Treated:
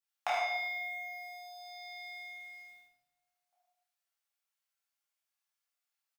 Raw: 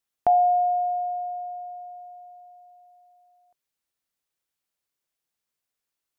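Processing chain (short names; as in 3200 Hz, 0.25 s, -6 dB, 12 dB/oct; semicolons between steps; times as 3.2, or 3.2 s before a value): HPF 700 Hz 24 dB/oct; sample leveller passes 3; compressor 6:1, threshold -29 dBFS, peak gain reduction 11.5 dB; early reflections 26 ms -4.5 dB, 76 ms -5 dB; shoebox room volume 300 m³, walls mixed, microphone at 2.3 m; gain -5.5 dB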